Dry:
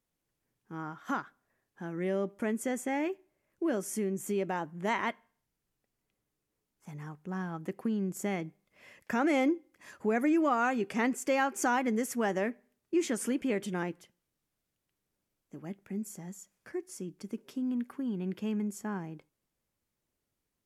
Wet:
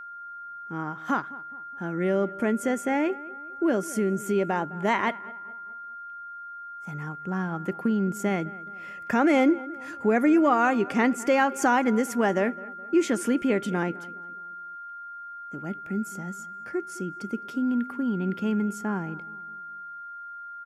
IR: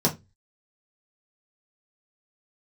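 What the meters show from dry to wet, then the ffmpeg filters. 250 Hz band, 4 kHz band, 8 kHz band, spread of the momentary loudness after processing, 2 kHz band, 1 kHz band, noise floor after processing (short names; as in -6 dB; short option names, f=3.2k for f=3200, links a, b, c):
+7.0 dB, +5.0 dB, +2.0 dB, 17 LU, +7.0 dB, +8.0 dB, -40 dBFS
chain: -filter_complex "[0:a]highshelf=f=4.6k:g=-6.5,aeval=exprs='val(0)+0.00562*sin(2*PI*1400*n/s)':c=same,asplit=2[a][b];[b]adelay=210,lowpass=f=1.9k:p=1,volume=-19dB,asplit=2[c][d];[d]adelay=210,lowpass=f=1.9k:p=1,volume=0.47,asplit=2[e][f];[f]adelay=210,lowpass=f=1.9k:p=1,volume=0.47,asplit=2[g][h];[h]adelay=210,lowpass=f=1.9k:p=1,volume=0.47[i];[c][e][g][i]amix=inputs=4:normalize=0[j];[a][j]amix=inputs=2:normalize=0,volume=7dB"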